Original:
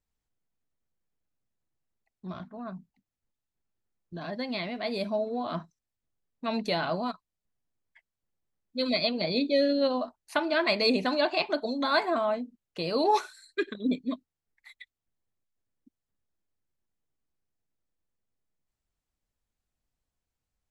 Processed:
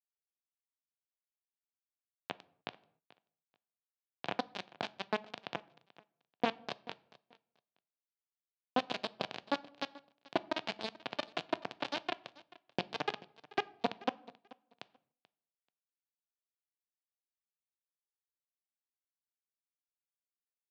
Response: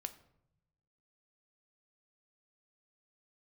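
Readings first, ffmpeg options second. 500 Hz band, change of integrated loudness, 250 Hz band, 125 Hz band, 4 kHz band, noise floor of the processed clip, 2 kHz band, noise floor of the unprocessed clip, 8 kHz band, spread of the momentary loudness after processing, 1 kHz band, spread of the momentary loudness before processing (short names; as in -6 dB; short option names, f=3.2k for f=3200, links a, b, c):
-13.0 dB, -11.0 dB, -13.5 dB, -11.0 dB, -9.5 dB, under -85 dBFS, -9.0 dB, under -85 dBFS, n/a, 15 LU, -8.0 dB, 16 LU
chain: -filter_complex "[0:a]acompressor=threshold=-39dB:ratio=20,acrusher=bits=3:dc=4:mix=0:aa=0.000001,highpass=f=130:w=0.5412,highpass=f=130:w=1.3066,equalizer=f=710:t=q:w=4:g=5,equalizer=f=1.3k:t=q:w=4:g=-5,equalizer=f=2k:t=q:w=4:g=-6,lowpass=f=3.8k:w=0.5412,lowpass=f=3.8k:w=1.3066,aecho=1:1:435|870:0.0891|0.016,asplit=2[a][b];[1:a]atrim=start_sample=2205,afade=t=out:st=0.35:d=0.01,atrim=end_sample=15876[c];[b][c]afir=irnorm=-1:irlink=0,volume=-1dB[d];[a][d]amix=inputs=2:normalize=0,volume=8dB"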